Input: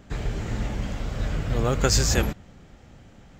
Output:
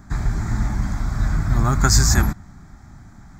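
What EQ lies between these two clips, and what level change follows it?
fixed phaser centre 1200 Hz, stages 4; +7.5 dB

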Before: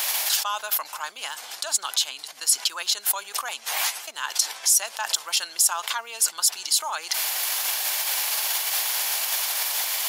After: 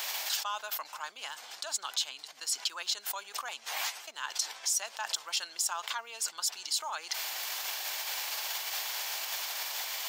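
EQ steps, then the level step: bell 11000 Hz -13.5 dB 0.47 oct; -7.5 dB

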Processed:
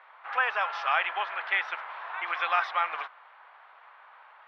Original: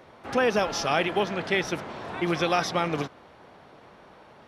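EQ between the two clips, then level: HPF 1000 Hz 24 dB/oct; LPF 3900 Hz 6 dB/oct; air absorption 490 m; +7.5 dB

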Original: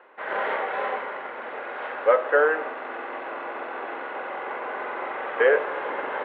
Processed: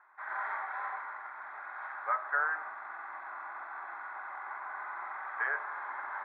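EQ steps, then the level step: HPF 790 Hz 12 dB/oct; LPF 3600 Hz 12 dB/oct; fixed phaser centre 1200 Hz, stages 4; -5.0 dB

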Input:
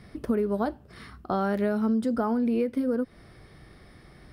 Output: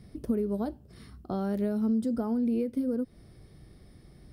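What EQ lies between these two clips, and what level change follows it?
bell 1500 Hz -13.5 dB 2.7 oct; 0.0 dB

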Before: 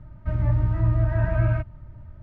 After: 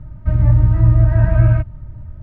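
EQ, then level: low shelf 280 Hz +7.5 dB; +3.0 dB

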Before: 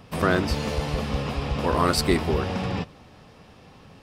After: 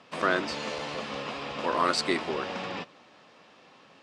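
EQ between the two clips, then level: speaker cabinet 370–7300 Hz, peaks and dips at 440 Hz -5 dB, 780 Hz -4 dB, 5300 Hz -4 dB; -1.0 dB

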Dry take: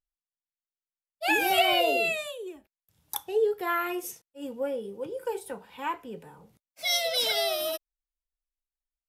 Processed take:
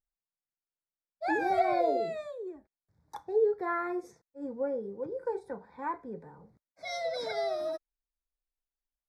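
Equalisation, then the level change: Butterworth band-stop 2900 Hz, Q 1.5; tape spacing loss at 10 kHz 28 dB; notch 1300 Hz, Q 18; 0.0 dB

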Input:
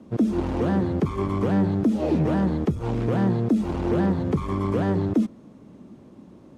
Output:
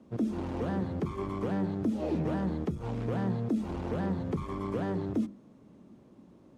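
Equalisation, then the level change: notches 50/100/150/200/250/300/350 Hz; -8.0 dB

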